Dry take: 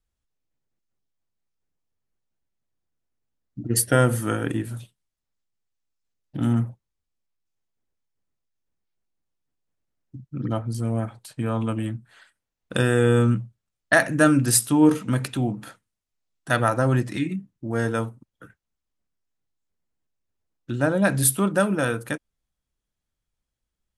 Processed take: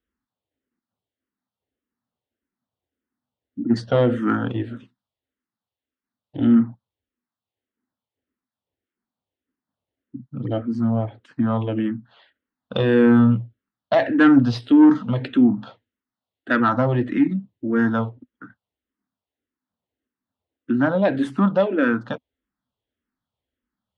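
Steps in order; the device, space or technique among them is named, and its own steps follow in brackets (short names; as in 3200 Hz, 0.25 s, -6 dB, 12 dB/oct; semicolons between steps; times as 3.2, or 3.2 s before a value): barber-pole phaser into a guitar amplifier (endless phaser -1.7 Hz; soft clip -15.5 dBFS, distortion -15 dB; speaker cabinet 100–3600 Hz, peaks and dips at 150 Hz -9 dB, 250 Hz +9 dB, 2400 Hz -7 dB); gain +6.5 dB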